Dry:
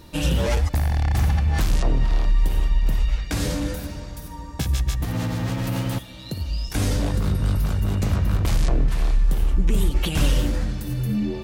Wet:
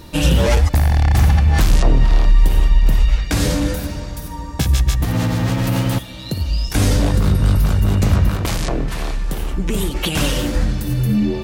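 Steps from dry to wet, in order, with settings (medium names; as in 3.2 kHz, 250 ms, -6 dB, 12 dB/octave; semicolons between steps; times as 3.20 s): 8.29–10.55 s: bass shelf 110 Hz -12 dB; trim +7 dB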